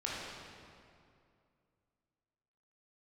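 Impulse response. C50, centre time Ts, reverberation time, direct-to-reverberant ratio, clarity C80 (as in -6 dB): -3.0 dB, 0.139 s, 2.4 s, -6.5 dB, -0.5 dB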